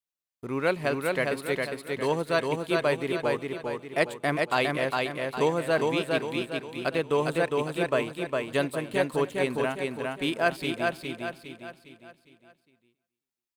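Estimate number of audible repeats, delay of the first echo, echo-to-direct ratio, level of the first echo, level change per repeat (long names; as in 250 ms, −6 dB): 10, 270 ms, −2.0 dB, −21.5 dB, repeats not evenly spaced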